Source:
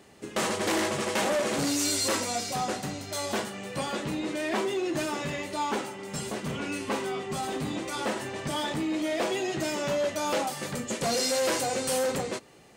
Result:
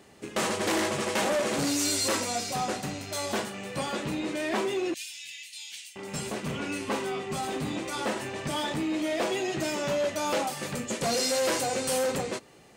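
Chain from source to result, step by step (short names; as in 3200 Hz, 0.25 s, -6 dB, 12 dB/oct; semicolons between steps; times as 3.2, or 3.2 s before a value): rattling part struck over -43 dBFS, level -36 dBFS; 4.94–5.96 inverse Chebyshev high-pass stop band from 1300 Hz, stop band 40 dB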